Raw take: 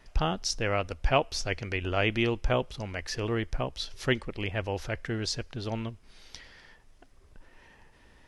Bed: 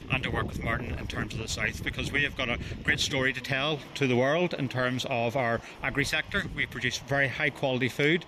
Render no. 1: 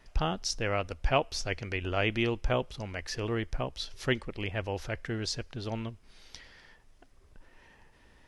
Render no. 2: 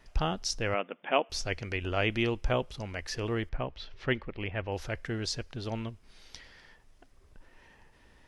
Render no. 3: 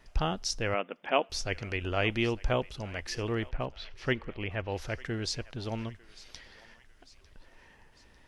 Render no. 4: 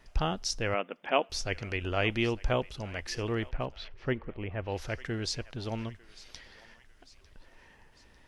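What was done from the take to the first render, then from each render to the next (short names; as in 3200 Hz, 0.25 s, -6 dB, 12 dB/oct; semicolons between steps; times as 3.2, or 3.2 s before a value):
gain -2 dB
0.74–1.3 brick-wall FIR band-pass 170–3600 Hz; 3.49–4.72 Chebyshev low-pass 2500 Hz
thinning echo 0.899 s, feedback 55%, high-pass 910 Hz, level -18.5 dB
3.88–4.62 LPF 1200 Hz 6 dB/oct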